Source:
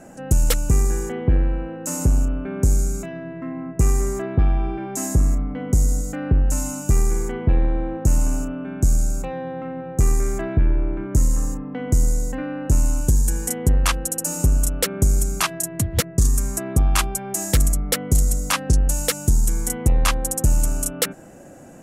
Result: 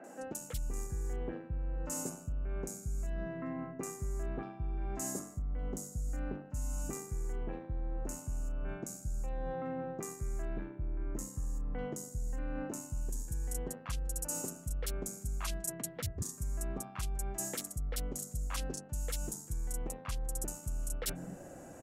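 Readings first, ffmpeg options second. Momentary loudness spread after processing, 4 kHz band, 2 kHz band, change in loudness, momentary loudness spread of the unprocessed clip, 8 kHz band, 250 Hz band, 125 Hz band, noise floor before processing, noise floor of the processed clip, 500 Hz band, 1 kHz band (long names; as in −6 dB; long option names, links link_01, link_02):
3 LU, −18.5 dB, −18.0 dB, −17.5 dB, 7 LU, −15.5 dB, −17.0 dB, −19.5 dB, −35 dBFS, −51 dBFS, −14.5 dB, −16.0 dB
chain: -filter_complex "[0:a]acrossover=split=230|2700[link_01][link_02][link_03];[link_03]adelay=40[link_04];[link_01]adelay=220[link_05];[link_05][link_02][link_04]amix=inputs=3:normalize=0,areverse,acompressor=threshold=-29dB:ratio=10,areverse,volume=-5dB"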